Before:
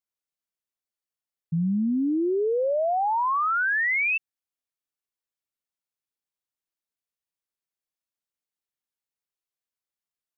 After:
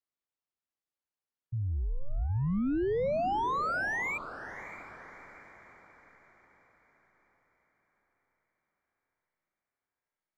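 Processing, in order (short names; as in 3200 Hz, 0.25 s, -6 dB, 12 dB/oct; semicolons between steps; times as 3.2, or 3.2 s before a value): overdrive pedal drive 12 dB, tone 1300 Hz, clips at -20.5 dBFS; frequency shift -280 Hz; diffused feedback echo 0.615 s, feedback 46%, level -12.5 dB; gain -4.5 dB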